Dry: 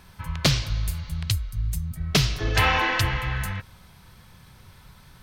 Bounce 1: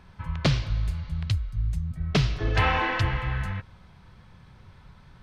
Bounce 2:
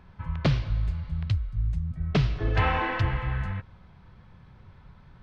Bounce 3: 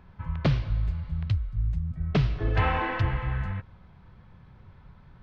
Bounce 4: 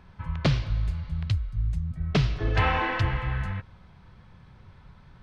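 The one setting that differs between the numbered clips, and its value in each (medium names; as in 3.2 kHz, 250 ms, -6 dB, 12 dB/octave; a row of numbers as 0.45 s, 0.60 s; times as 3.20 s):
tape spacing loss, at 10 kHz: 20 dB, 37 dB, 45 dB, 29 dB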